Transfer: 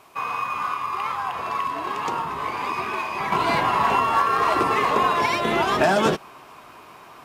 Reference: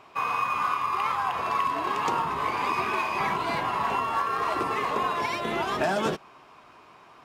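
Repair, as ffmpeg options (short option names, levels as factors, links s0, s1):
-af "agate=range=0.0891:threshold=0.0141,asetnsamples=n=441:p=0,asendcmd='3.32 volume volume -7dB',volume=1"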